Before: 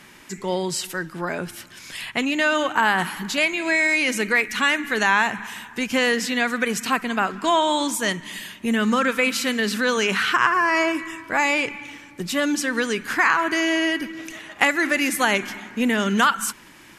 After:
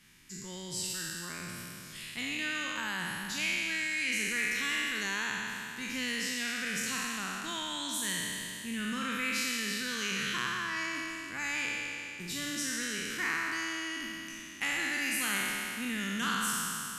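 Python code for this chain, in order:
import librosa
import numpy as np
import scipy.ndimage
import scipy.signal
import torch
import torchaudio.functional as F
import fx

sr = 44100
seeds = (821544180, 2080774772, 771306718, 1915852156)

y = fx.spec_trails(x, sr, decay_s=2.93)
y = fx.tone_stack(y, sr, knobs='6-0-2')
y = y * librosa.db_to_amplitude(2.0)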